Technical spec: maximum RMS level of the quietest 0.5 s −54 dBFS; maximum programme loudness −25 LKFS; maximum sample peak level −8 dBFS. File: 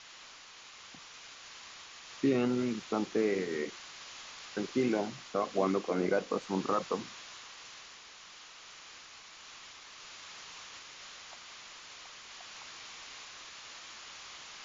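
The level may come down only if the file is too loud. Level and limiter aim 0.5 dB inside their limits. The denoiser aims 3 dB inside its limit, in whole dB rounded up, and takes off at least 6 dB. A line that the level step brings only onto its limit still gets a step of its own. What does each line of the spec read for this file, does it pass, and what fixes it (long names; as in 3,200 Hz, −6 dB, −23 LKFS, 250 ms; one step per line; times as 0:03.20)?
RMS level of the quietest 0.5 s −52 dBFS: out of spec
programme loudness −35.5 LKFS: in spec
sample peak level −16.5 dBFS: in spec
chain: broadband denoise 6 dB, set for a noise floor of −52 dBFS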